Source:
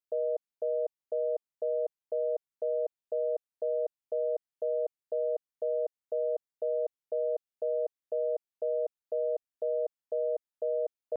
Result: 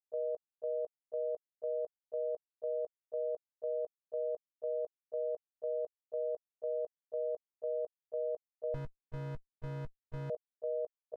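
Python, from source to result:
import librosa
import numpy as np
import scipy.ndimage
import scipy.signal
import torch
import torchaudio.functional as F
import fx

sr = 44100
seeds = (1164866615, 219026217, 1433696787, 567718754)

y = fx.level_steps(x, sr, step_db=15)
y = fx.running_max(y, sr, window=65, at=(8.74, 10.3))
y = y * librosa.db_to_amplitude(-5.0)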